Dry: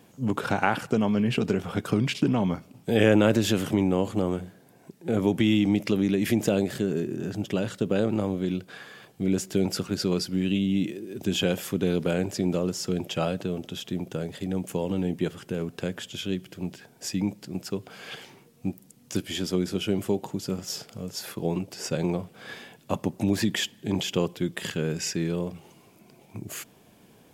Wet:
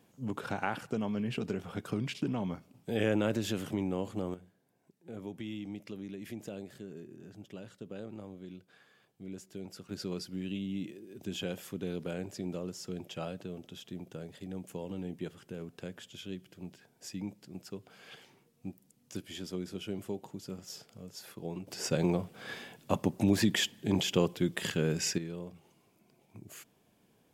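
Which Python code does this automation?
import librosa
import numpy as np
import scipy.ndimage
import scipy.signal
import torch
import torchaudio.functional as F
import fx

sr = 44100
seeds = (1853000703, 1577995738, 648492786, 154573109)

y = fx.gain(x, sr, db=fx.steps((0.0, -10.0), (4.34, -19.0), (9.89, -12.0), (21.67, -2.0), (25.18, -12.5)))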